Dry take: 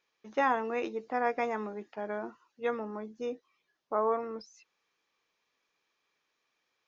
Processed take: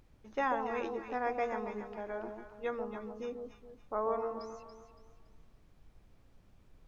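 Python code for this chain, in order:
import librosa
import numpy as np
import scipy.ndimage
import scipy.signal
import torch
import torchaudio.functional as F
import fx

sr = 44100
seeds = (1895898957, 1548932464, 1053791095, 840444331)

y = fx.dmg_noise_colour(x, sr, seeds[0], colour='brown', level_db=-55.0)
y = fx.echo_alternate(y, sr, ms=141, hz=920.0, feedback_pct=58, wet_db=-4.0)
y = y * 10.0 ** (-5.0 / 20.0)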